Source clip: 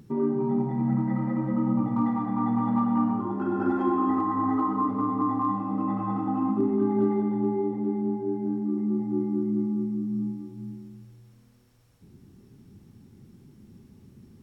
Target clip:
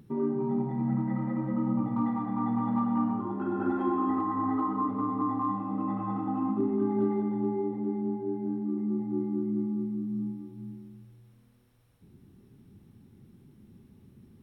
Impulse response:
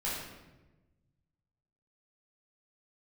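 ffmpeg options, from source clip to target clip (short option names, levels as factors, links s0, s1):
-af "superequalizer=14b=0.501:15b=0.398,volume=0.668"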